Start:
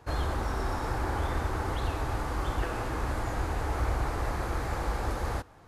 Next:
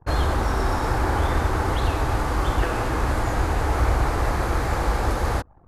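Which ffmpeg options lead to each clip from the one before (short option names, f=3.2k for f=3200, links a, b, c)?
-af "anlmdn=0.00631,volume=8.5dB"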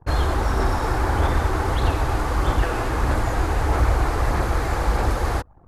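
-af "aphaser=in_gain=1:out_gain=1:delay=2.9:decay=0.24:speed=1.6:type=sinusoidal"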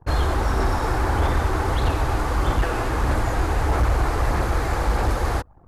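-af "asoftclip=type=hard:threshold=-13.5dB"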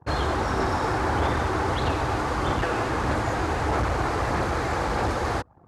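-af "highpass=100,lowpass=7.7k"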